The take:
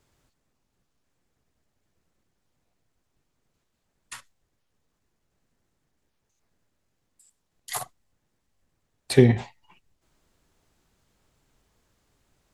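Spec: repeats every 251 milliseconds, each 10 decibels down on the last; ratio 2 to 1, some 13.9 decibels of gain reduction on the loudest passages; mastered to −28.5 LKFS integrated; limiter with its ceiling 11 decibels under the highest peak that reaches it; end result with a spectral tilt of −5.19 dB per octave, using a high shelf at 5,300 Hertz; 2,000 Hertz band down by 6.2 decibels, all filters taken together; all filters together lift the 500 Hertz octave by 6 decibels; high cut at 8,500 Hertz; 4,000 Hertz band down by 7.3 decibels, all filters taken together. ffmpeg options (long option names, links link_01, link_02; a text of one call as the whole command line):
ffmpeg -i in.wav -af "lowpass=8500,equalizer=frequency=500:width_type=o:gain=9,equalizer=frequency=2000:width_type=o:gain=-5.5,equalizer=frequency=4000:width_type=o:gain=-3.5,highshelf=frequency=5300:gain=-8.5,acompressor=threshold=-32dB:ratio=2,alimiter=limit=-23dB:level=0:latency=1,aecho=1:1:251|502|753|1004:0.316|0.101|0.0324|0.0104,volume=11dB" out.wav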